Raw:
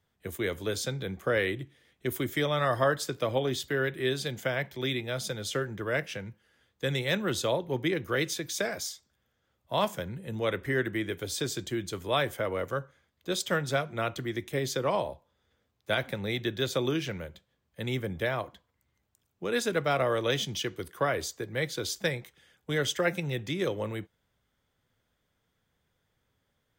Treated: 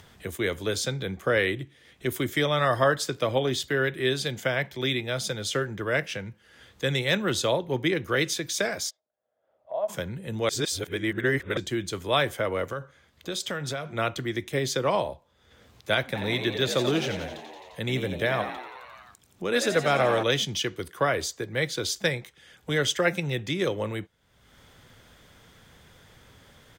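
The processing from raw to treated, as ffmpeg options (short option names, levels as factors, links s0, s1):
-filter_complex "[0:a]asplit=3[s0][s1][s2];[s0]afade=t=out:st=8.89:d=0.02[s3];[s1]bandpass=f=630:t=q:w=6.8,afade=t=in:st=8.89:d=0.02,afade=t=out:st=9.88:d=0.02[s4];[s2]afade=t=in:st=9.88:d=0.02[s5];[s3][s4][s5]amix=inputs=3:normalize=0,asettb=1/sr,asplit=3[s6][s7][s8];[s6]atrim=end=12.714[s9];[s7]atrim=start=12.71:end=13.96,asetpts=PTS-STARTPTS,afade=t=in:d=0.004:c=qsin,afade=t=out:st=1.246:d=0.004:c=qsin,acompressor=threshold=0.0282:ratio=6:attack=3.2:release=140:knee=1:detection=peak[s10];[s8]atrim=start=13.956[s11];[s9][s10]acrossfade=d=0.004:c1=hsin:c2=qsin[s12];[s12][s11]acrossfade=d=0.004:c1=qsin:c2=hsin,asplit=3[s13][s14][s15];[s13]afade=t=out:st=16.14:d=0.02[s16];[s14]asplit=9[s17][s18][s19][s20][s21][s22][s23][s24][s25];[s18]adelay=87,afreqshift=75,volume=0.376[s26];[s19]adelay=174,afreqshift=150,volume=0.232[s27];[s20]adelay=261,afreqshift=225,volume=0.145[s28];[s21]adelay=348,afreqshift=300,volume=0.0891[s29];[s22]adelay=435,afreqshift=375,volume=0.0556[s30];[s23]adelay=522,afreqshift=450,volume=0.0343[s31];[s24]adelay=609,afreqshift=525,volume=0.0214[s32];[s25]adelay=696,afreqshift=600,volume=0.0132[s33];[s17][s26][s27][s28][s29][s30][s31][s32][s33]amix=inputs=9:normalize=0,afade=t=in:st=16.14:d=0.02,afade=t=out:st=20.22:d=0.02[s34];[s15]afade=t=in:st=20.22:d=0.02[s35];[s16][s34][s35]amix=inputs=3:normalize=0,asplit=3[s36][s37][s38];[s36]atrim=end=10.492[s39];[s37]atrim=start=10.488:end=11.572,asetpts=PTS-STARTPTS,areverse[s40];[s38]atrim=start=11.568[s41];[s39][s40]acrossfade=d=0.004:c1=hsin:c2=hsin[s42];[s42][s41]acrossfade=d=0.004:c1=hsin:c2=hsin,equalizer=f=13000:t=o:w=2.6:g=14.5,acompressor=mode=upward:threshold=0.0158:ratio=2.5,aemphasis=mode=reproduction:type=75kf,volume=1.41"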